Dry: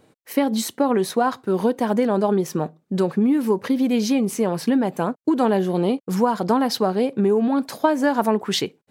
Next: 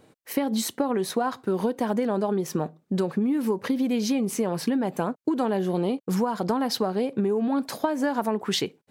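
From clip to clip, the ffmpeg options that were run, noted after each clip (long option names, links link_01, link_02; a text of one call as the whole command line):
ffmpeg -i in.wav -af "acompressor=threshold=-22dB:ratio=4" out.wav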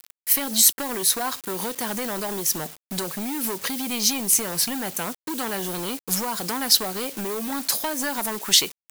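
ffmpeg -i in.wav -filter_complex "[0:a]acrossover=split=1100[link_01][link_02];[link_01]asoftclip=type=hard:threshold=-24.5dB[link_03];[link_03][link_02]amix=inputs=2:normalize=0,acrusher=bits=7:mix=0:aa=0.000001,crystalizer=i=9.5:c=0,volume=-4.5dB" out.wav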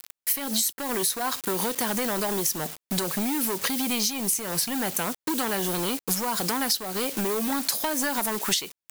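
ffmpeg -i in.wav -af "acompressor=threshold=-26dB:ratio=16,volume=4dB" out.wav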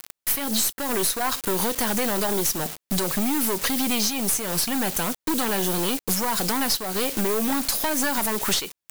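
ffmpeg -i in.wav -af "aeval=exprs='(tanh(15.8*val(0)+0.55)-tanh(0.55))/15.8':channel_layout=same,volume=6.5dB" out.wav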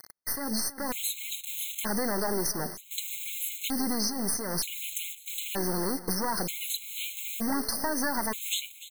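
ffmpeg -i in.wav -af "acrusher=bits=4:mode=log:mix=0:aa=0.000001,aecho=1:1:295|590|885|1180:0.158|0.0792|0.0396|0.0198,afftfilt=real='re*gt(sin(2*PI*0.54*pts/sr)*(1-2*mod(floor(b*sr/1024/2100),2)),0)':imag='im*gt(sin(2*PI*0.54*pts/sr)*(1-2*mod(floor(b*sr/1024/2100),2)),0)':win_size=1024:overlap=0.75,volume=-4.5dB" out.wav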